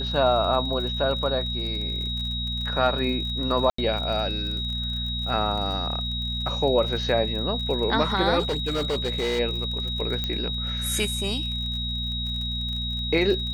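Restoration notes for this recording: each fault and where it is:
surface crackle 39 per second −32 dBFS
mains hum 60 Hz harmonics 4 −31 dBFS
whistle 3,800 Hz −29 dBFS
0:03.70–0:03.78: drop-out 84 ms
0:08.39–0:09.40: clipping −21.5 dBFS
0:10.24: click −13 dBFS

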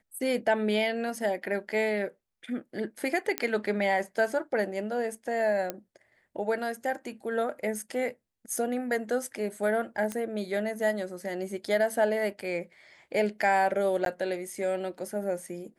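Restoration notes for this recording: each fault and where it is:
0:03.38: click −11 dBFS
0:05.70: click −16 dBFS
0:10.12: click −19 dBFS
0:14.05–0:14.06: drop-out 12 ms

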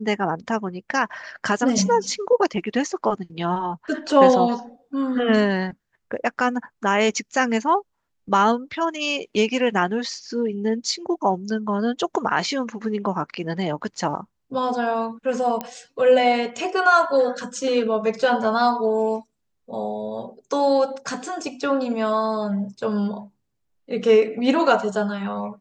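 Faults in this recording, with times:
0:15.61: click −13 dBFS

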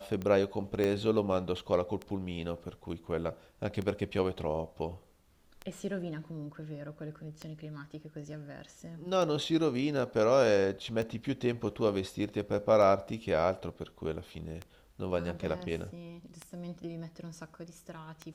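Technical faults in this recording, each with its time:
scratch tick 33 1/3 rpm −24 dBFS
0:00.84: click −18 dBFS

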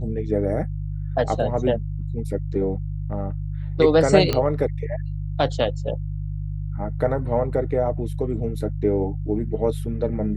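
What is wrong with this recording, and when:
mains hum 50 Hz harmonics 3 −28 dBFS
0:04.33: click −8 dBFS

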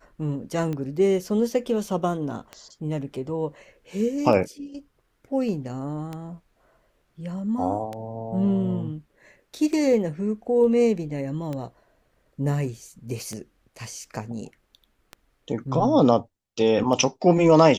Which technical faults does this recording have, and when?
scratch tick 33 1/3 rpm −19 dBFS

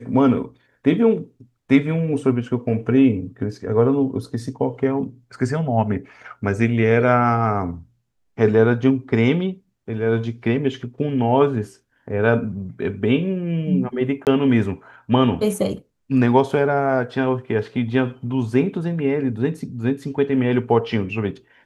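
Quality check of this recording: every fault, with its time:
0:14.25–0:14.27: drop-out 18 ms

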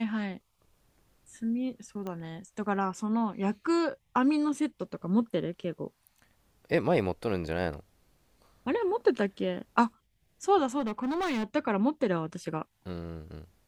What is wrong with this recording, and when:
0:02.07: click −25 dBFS
0:10.79–0:11.44: clipping −27.5 dBFS

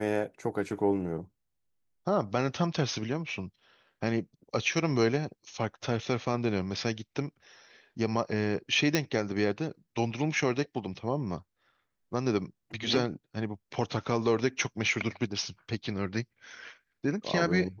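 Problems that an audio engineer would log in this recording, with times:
0:08.95: click −10 dBFS

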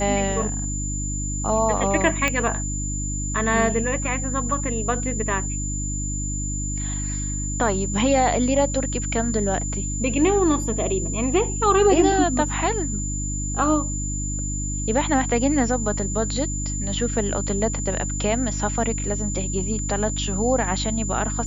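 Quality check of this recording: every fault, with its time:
mains hum 50 Hz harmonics 6 −28 dBFS
whistle 7,100 Hz −29 dBFS
0:02.28: click −7 dBFS

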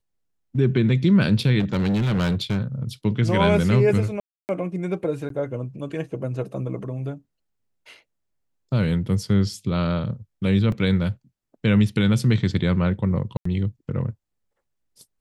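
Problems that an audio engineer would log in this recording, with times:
0:01.59–0:02.83: clipping −18.5 dBFS
0:04.20–0:04.49: drop-out 289 ms
0:05.29–0:05.30: drop-out
0:10.72: drop-out 2.4 ms
0:13.37–0:13.45: drop-out 84 ms

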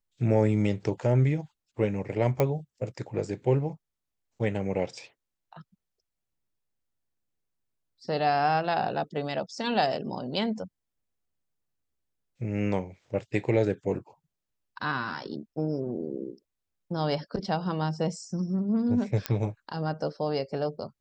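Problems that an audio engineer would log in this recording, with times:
0:02.40: click −12 dBFS
0:19.26: click −11 dBFS

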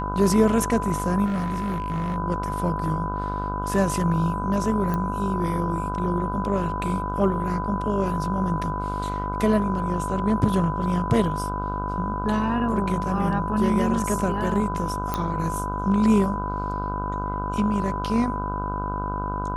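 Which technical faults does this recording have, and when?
mains buzz 50 Hz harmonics 31 −30 dBFS
whistle 1,000 Hz −29 dBFS
0:01.25–0:02.17: clipping −22.5 dBFS
0:04.94: click −15 dBFS
0:15.14: click −11 dBFS

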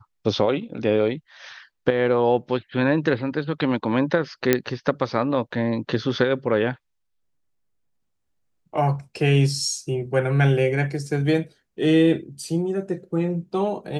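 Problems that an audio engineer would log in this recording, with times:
0:04.53: click −3 dBFS

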